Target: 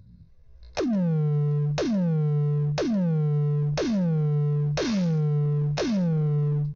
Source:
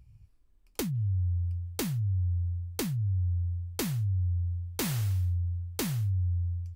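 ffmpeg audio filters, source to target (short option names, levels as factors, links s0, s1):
-filter_complex "[0:a]dynaudnorm=f=240:g=5:m=3.76,bandreject=f=1800:w=6.2,aecho=1:1:3.2:0.43,acompressor=threshold=0.0794:ratio=16,aresample=8000,asoftclip=type=hard:threshold=0.0473,aresample=44100,asetrate=74167,aresample=44100,atempo=0.594604,asplit=2[s0][s1];[s1]aecho=0:1:161:0.0668[s2];[s0][s2]amix=inputs=2:normalize=0,volume=1.68"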